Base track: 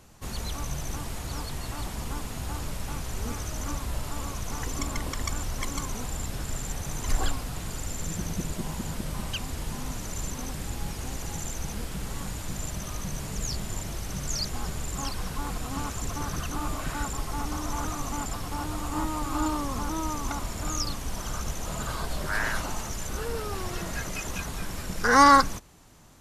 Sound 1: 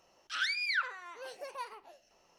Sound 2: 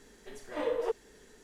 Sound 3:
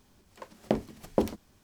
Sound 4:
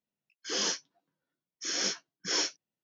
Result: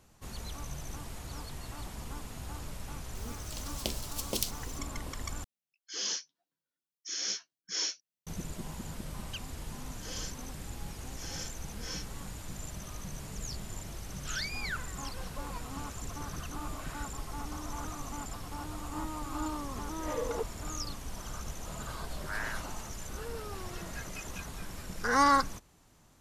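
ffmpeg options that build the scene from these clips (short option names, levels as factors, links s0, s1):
-filter_complex "[4:a]asplit=2[s0][s1];[0:a]volume=0.398[s2];[3:a]aexciter=amount=9.5:drive=9.7:freq=2600[s3];[s0]highshelf=f=2200:g=12[s4];[s1]aecho=1:1:3.9:0.86[s5];[s2]asplit=2[s6][s7];[s6]atrim=end=5.444[s8];[s4]atrim=end=2.83,asetpts=PTS-STARTPTS,volume=0.224[s9];[s7]atrim=start=8.266[s10];[s3]atrim=end=1.63,asetpts=PTS-STARTPTS,volume=0.237,afade=t=in:d=0.004:c=hsin,afade=t=out:st=1.626:d=0.004:c=hsin,adelay=3150[s11];[s5]atrim=end=2.83,asetpts=PTS-STARTPTS,volume=0.188,afade=t=in:d=0.004:c=hsin,afade=t=out:st=2.826:d=0.004:c=hsin,adelay=9550[s12];[1:a]atrim=end=2.38,asetpts=PTS-STARTPTS,volume=0.501,afade=t=in:d=0.004:c=hsin,afade=t=out:st=2.376:d=0.004:c=hsin,adelay=13950[s13];[2:a]atrim=end=1.43,asetpts=PTS-STARTPTS,volume=0.631,afade=t=in:d=0.004:c=hsin,afade=t=out:st=1.426:d=0.004:c=hsin,adelay=19510[s14];[s8][s9]acrossfade=d=0.004:c1=hsin:c2=hsin[s15];[s15][s10]acrossfade=d=0.004:c1=hsin:c2=hsin[s16];[s16][s11][s12][s13][s14]amix=inputs=5:normalize=0"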